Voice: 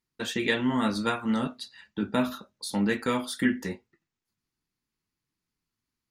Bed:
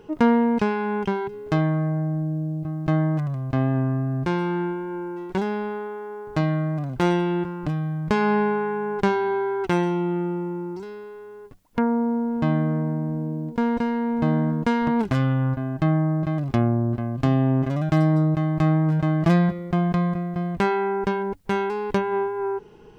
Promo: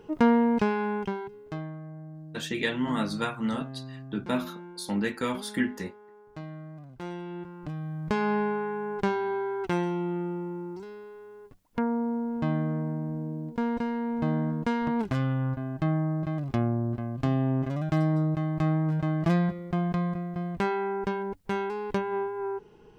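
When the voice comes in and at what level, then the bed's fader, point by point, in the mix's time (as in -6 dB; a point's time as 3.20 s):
2.15 s, -2.5 dB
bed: 0.83 s -3 dB
1.80 s -18 dB
6.99 s -18 dB
8.09 s -6 dB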